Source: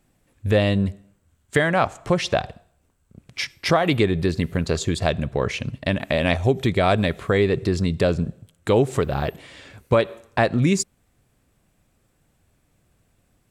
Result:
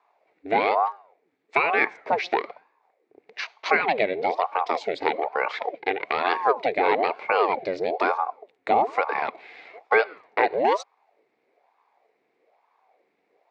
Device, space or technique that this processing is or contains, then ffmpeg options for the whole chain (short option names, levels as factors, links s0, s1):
voice changer toy: -af "aeval=exprs='val(0)*sin(2*PI*600*n/s+600*0.7/1.1*sin(2*PI*1.1*n/s))':c=same,highpass=430,equalizer=f=440:t=q:w=4:g=7,equalizer=f=740:t=q:w=4:g=6,equalizer=f=1400:t=q:w=4:g=-3,equalizer=f=2200:t=q:w=4:g=10,equalizer=f=3100:t=q:w=4:g=-8,lowpass=f=4300:w=0.5412,lowpass=f=4300:w=1.3066,volume=0.891"